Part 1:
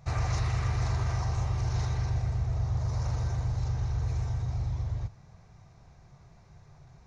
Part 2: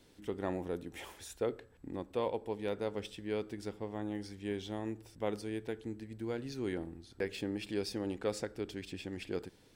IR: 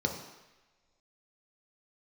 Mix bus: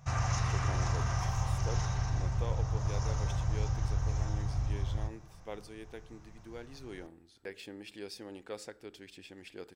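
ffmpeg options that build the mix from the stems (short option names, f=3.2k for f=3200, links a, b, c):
-filter_complex "[0:a]asubboost=boost=4:cutoff=57,volume=3dB,asplit=2[a][b];[b]volume=-12.5dB[c];[1:a]adelay=250,volume=-4dB[d];[2:a]atrim=start_sample=2205[e];[c][e]afir=irnorm=-1:irlink=0[f];[a][d][f]amix=inputs=3:normalize=0,lowshelf=f=360:g=-9.5"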